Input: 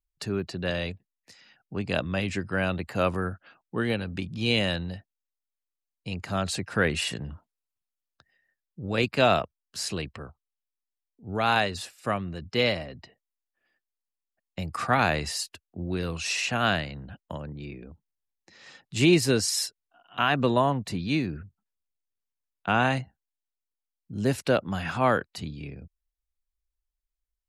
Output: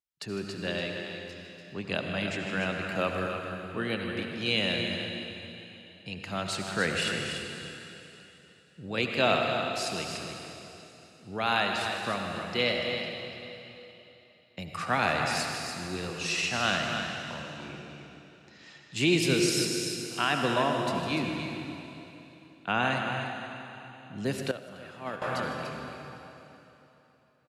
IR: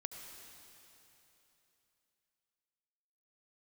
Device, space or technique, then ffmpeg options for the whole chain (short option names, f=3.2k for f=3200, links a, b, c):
stadium PA: -filter_complex "[0:a]highpass=120,equalizer=f=3k:t=o:w=1.8:g=4,aecho=1:1:154.5|291.5:0.251|0.398[a];[1:a]atrim=start_sample=2205[b];[a][b]afir=irnorm=-1:irlink=0,asettb=1/sr,asplit=3[c][d][e];[c]atrim=end=24.514[f];[d]atrim=start=24.51:end=25.22,asetpts=PTS-STARTPTS,afade=t=in:d=0.004:c=qsin,afade=t=out:st=0.706:d=0.004:c=qsin,agate=range=-14dB:threshold=-21dB:ratio=16:detection=peak[g];[e]atrim=start=25.216[h];[f][g]acrossfade=d=0.004:c1=hsin:c2=qsin[i];[i][h]acrossfade=d=0.004:c1=qsin:c2=hsin,volume=-1.5dB"